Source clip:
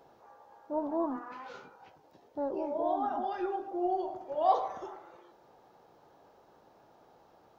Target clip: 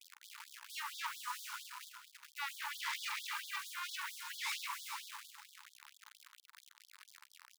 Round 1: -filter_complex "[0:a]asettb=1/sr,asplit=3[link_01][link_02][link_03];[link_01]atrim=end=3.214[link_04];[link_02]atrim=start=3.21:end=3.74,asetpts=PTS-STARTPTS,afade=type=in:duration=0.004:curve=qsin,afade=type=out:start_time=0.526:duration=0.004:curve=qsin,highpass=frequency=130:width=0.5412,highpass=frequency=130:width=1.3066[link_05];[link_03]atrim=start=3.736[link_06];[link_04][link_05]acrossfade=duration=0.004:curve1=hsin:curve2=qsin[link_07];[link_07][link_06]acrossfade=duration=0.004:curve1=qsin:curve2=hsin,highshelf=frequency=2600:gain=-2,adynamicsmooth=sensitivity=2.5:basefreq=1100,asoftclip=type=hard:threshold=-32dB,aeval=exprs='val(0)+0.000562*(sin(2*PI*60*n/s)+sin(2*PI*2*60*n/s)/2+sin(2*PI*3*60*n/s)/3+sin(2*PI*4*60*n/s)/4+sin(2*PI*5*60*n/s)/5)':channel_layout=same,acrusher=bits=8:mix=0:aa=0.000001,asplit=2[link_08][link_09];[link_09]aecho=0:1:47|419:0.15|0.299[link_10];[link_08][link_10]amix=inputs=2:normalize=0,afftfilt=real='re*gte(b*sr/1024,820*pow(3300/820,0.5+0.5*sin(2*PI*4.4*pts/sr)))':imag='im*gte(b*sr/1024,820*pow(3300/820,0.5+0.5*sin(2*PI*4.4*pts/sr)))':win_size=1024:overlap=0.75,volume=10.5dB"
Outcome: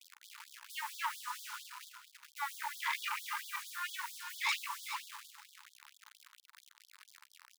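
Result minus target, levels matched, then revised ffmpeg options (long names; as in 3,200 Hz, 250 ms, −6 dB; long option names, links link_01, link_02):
hard clipping: distortion −4 dB
-filter_complex "[0:a]asettb=1/sr,asplit=3[link_01][link_02][link_03];[link_01]atrim=end=3.214[link_04];[link_02]atrim=start=3.21:end=3.74,asetpts=PTS-STARTPTS,afade=type=in:duration=0.004:curve=qsin,afade=type=out:start_time=0.526:duration=0.004:curve=qsin,highpass=frequency=130:width=0.5412,highpass=frequency=130:width=1.3066[link_05];[link_03]atrim=start=3.736[link_06];[link_04][link_05]acrossfade=duration=0.004:curve1=hsin:curve2=qsin[link_07];[link_07][link_06]acrossfade=duration=0.004:curve1=qsin:curve2=hsin,highshelf=frequency=2600:gain=-2,adynamicsmooth=sensitivity=2.5:basefreq=1100,asoftclip=type=hard:threshold=-40.5dB,aeval=exprs='val(0)+0.000562*(sin(2*PI*60*n/s)+sin(2*PI*2*60*n/s)/2+sin(2*PI*3*60*n/s)/3+sin(2*PI*4*60*n/s)/4+sin(2*PI*5*60*n/s)/5)':channel_layout=same,acrusher=bits=8:mix=0:aa=0.000001,asplit=2[link_08][link_09];[link_09]aecho=0:1:47|419:0.15|0.299[link_10];[link_08][link_10]amix=inputs=2:normalize=0,afftfilt=real='re*gte(b*sr/1024,820*pow(3300/820,0.5+0.5*sin(2*PI*4.4*pts/sr)))':imag='im*gte(b*sr/1024,820*pow(3300/820,0.5+0.5*sin(2*PI*4.4*pts/sr)))':win_size=1024:overlap=0.75,volume=10.5dB"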